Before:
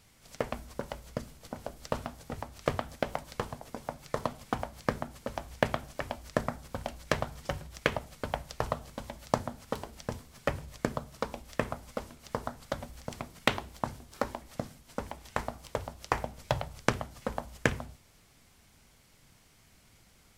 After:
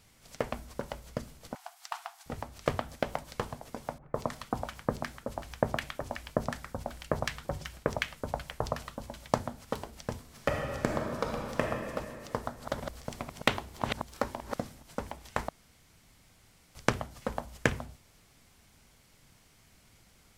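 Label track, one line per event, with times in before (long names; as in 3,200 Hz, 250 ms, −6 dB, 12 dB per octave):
1.550000	2.260000	linear-phase brick-wall high-pass 670 Hz
3.980000	9.320000	multiband delay without the direct sound lows, highs 160 ms, split 1,400 Hz
10.200000	11.610000	thrown reverb, RT60 2.6 s, DRR 0 dB
12.350000	14.950000	delay that plays each chunk backwards 225 ms, level −5.5 dB
15.490000	16.750000	fill with room tone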